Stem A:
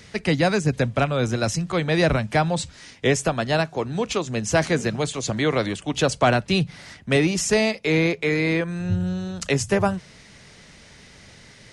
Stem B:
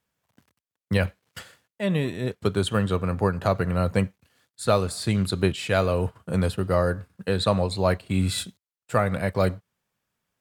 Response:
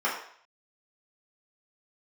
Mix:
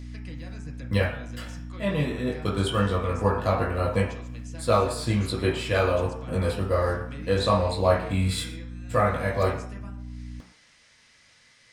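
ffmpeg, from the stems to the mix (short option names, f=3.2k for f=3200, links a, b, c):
-filter_complex "[0:a]tiltshelf=f=970:g=-6,acrossover=split=290[a][b];[b]acompressor=threshold=-37dB:ratio=4[c];[a][c]amix=inputs=2:normalize=0,volume=-13dB,asplit=2[d][e];[e]volume=-12.5dB[f];[1:a]equalizer=f=1.4k:w=1.5:g=-4,flanger=delay=18.5:depth=2:speed=0.2,aeval=exprs='val(0)+0.0126*(sin(2*PI*60*n/s)+sin(2*PI*2*60*n/s)/2+sin(2*PI*3*60*n/s)/3+sin(2*PI*4*60*n/s)/4+sin(2*PI*5*60*n/s)/5)':c=same,volume=2dB,asplit=3[g][h][i];[h]volume=-9dB[j];[i]volume=-21.5dB[k];[2:a]atrim=start_sample=2205[l];[f][j]amix=inputs=2:normalize=0[m];[m][l]afir=irnorm=-1:irlink=0[n];[k]aecho=0:1:117:1[o];[d][g][n][o]amix=inputs=4:normalize=0,equalizer=f=380:t=o:w=1.2:g=-3.5"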